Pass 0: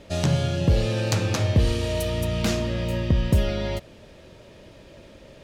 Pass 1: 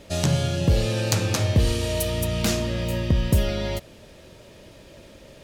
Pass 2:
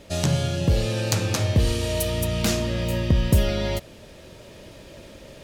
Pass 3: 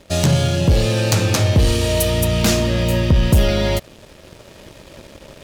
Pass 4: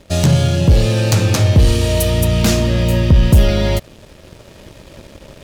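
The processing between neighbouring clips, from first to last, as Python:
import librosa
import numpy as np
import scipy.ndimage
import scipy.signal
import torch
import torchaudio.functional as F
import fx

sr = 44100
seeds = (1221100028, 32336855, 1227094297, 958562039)

y1 = fx.high_shelf(x, sr, hz=6800.0, db=10.5)
y2 = fx.rider(y1, sr, range_db=10, speed_s=2.0)
y3 = fx.leveller(y2, sr, passes=2)
y4 = fx.low_shelf(y3, sr, hz=220.0, db=5.0)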